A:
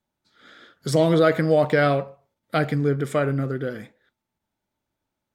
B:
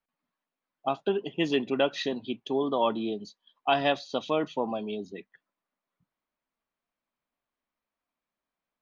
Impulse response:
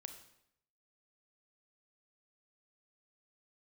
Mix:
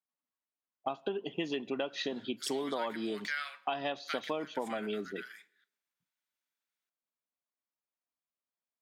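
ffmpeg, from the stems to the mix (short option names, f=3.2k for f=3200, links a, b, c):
-filter_complex "[0:a]highpass=f=1.5k:w=0.5412,highpass=f=1.5k:w=1.3066,adelay=1550,volume=-6.5dB,asplit=2[a][b];[b]volume=-8.5dB[c];[1:a]agate=range=-14dB:threshold=-48dB:ratio=16:detection=peak,highpass=f=180:p=1,volume=0.5dB,asplit=2[d][e];[e]volume=-15dB[f];[2:a]atrim=start_sample=2205[g];[c][f]amix=inputs=2:normalize=0[h];[h][g]afir=irnorm=-1:irlink=0[i];[a][d][i]amix=inputs=3:normalize=0,acompressor=threshold=-31dB:ratio=10"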